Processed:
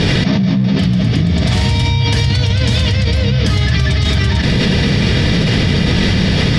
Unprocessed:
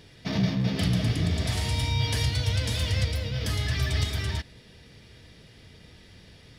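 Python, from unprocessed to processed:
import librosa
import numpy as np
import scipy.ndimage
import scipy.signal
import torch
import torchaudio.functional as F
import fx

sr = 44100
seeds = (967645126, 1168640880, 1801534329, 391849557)

y = scipy.signal.sosfilt(scipy.signal.butter(2, 5700.0, 'lowpass', fs=sr, output='sos'), x)
y = fx.peak_eq(y, sr, hz=180.0, db=7.5, octaves=0.89)
y = fx.env_flatten(y, sr, amount_pct=100)
y = y * 10.0 ** (2.0 / 20.0)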